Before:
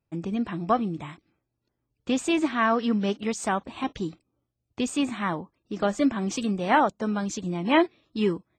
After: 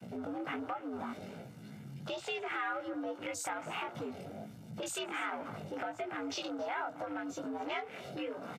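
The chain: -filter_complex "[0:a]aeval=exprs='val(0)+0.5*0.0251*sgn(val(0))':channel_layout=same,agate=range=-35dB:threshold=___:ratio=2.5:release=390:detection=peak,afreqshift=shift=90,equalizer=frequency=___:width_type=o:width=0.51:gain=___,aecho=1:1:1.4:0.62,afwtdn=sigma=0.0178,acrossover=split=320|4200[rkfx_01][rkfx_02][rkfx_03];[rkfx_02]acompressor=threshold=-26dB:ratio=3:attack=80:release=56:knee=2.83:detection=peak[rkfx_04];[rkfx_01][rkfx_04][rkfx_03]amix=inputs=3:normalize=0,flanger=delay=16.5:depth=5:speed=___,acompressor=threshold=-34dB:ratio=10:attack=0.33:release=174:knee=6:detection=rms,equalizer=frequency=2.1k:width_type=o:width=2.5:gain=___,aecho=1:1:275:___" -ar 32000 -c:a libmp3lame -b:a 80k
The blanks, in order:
-36dB, 62, -8, 1.3, 7, 0.1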